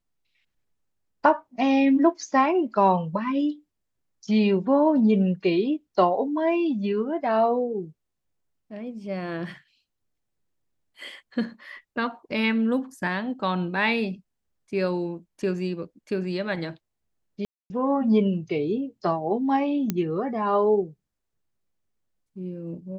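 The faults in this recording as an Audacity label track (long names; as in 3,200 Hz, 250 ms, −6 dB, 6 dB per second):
17.450000	17.700000	drop-out 250 ms
19.900000	19.900000	click −11 dBFS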